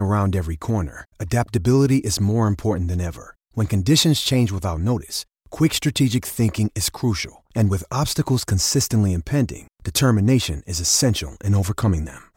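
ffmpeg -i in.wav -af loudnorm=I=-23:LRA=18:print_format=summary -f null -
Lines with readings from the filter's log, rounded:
Input Integrated:    -20.5 LUFS
Input True Peak:      -4.0 dBTP
Input LRA:             1.2 LU
Input Threshold:     -30.8 LUFS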